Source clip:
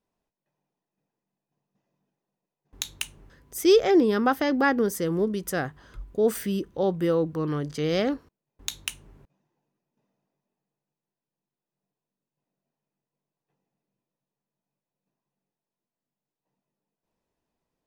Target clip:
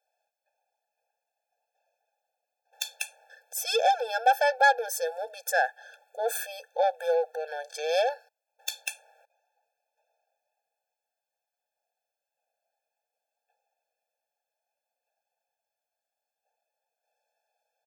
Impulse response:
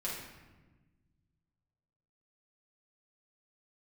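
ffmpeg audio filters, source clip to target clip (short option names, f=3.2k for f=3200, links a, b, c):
-af "aecho=1:1:1.1:0.55,asoftclip=type=tanh:threshold=-19.5dB,afftfilt=real='re*eq(mod(floor(b*sr/1024/450),2),1)':imag='im*eq(mod(floor(b*sr/1024/450),2),1)':win_size=1024:overlap=0.75,volume=7.5dB"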